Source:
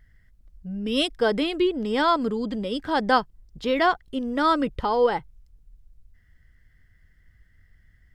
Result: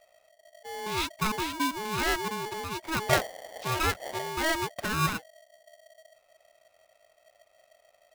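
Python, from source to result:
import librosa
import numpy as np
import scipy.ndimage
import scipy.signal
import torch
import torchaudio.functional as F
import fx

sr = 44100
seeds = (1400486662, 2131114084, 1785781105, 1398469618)

y = fx.dmg_wind(x, sr, seeds[0], corner_hz=110.0, level_db=-25.0, at=(3.08, 4.3), fade=0.02)
y = y * np.sign(np.sin(2.0 * np.pi * 640.0 * np.arange(len(y)) / sr))
y = y * 10.0 ** (-7.0 / 20.0)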